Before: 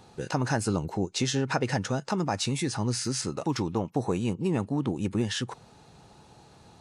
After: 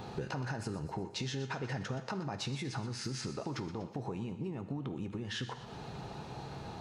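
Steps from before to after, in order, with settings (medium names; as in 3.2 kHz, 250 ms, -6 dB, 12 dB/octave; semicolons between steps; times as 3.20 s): peaking EQ 9.1 kHz -14 dB 1.2 oct; peak limiter -23 dBFS, peak gain reduction 9 dB; compression 10:1, threshold -45 dBFS, peak gain reduction 17.5 dB; thinning echo 122 ms, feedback 57%, high-pass 940 Hz, level -13.5 dB; on a send at -9 dB: reverberation RT60 1.1 s, pre-delay 4 ms; on the sum: trim +9 dB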